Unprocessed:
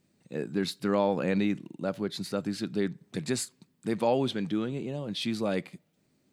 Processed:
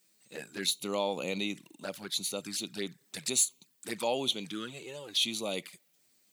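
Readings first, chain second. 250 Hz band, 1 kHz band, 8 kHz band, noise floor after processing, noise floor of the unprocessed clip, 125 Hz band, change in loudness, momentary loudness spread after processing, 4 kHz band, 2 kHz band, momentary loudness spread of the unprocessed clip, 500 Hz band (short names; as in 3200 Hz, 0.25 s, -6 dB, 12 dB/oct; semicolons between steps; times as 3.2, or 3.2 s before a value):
-10.0 dB, -5.0 dB, +9.5 dB, -70 dBFS, -72 dBFS, -12.5 dB, -2.0 dB, 14 LU, +6.5 dB, -1.0 dB, 9 LU, -6.0 dB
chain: tilt +4.5 dB/oct; soft clip -10.5 dBFS, distortion -25 dB; envelope flanger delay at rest 10.3 ms, full sweep at -29 dBFS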